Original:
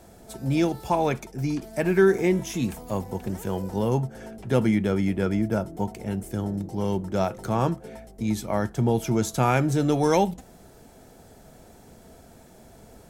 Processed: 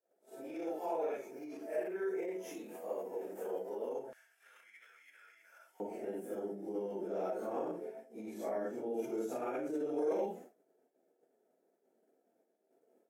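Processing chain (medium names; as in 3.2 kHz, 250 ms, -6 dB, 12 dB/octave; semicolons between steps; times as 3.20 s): phase randomisation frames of 200 ms; graphic EQ 1/4/8 kHz -10/-10/-4 dB; expander -38 dBFS; tilt shelf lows +7.5 dB, about 1.2 kHz; peak limiter -21 dBFS, peak gain reduction 16 dB; high-pass 440 Hz 24 dB/octave, from 4.13 s 1.5 kHz, from 5.80 s 350 Hz; trim -3 dB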